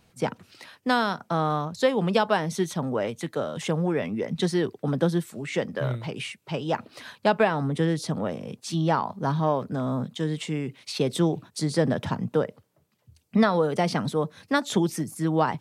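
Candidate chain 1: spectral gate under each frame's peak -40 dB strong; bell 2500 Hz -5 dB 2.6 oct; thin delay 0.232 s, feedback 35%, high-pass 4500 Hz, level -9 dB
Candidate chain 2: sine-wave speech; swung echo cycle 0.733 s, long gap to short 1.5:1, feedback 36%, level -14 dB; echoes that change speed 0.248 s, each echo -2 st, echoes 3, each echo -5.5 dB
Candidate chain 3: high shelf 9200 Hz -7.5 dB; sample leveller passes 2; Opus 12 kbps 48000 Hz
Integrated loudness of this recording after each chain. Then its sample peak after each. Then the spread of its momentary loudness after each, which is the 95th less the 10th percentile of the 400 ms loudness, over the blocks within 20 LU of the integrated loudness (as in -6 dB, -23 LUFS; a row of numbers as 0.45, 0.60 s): -27.5, -25.5, -21.0 LUFS; -9.0, -6.0, -6.0 dBFS; 8, 9, 7 LU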